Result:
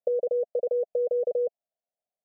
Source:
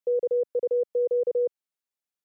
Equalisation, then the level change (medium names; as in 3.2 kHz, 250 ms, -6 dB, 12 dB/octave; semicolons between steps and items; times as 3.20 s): dynamic bell 490 Hz, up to -7 dB, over -37 dBFS, Q 5; resonant low-pass 680 Hz, resonance Q 6.8; static phaser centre 330 Hz, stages 6; 0.0 dB